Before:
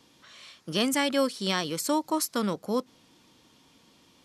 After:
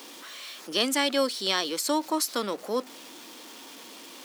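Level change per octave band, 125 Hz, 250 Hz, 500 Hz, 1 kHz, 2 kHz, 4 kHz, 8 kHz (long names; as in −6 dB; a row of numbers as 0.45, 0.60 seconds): below −10 dB, −2.5 dB, +0.5 dB, +0.5 dB, +1.5 dB, +4.0 dB, +2.0 dB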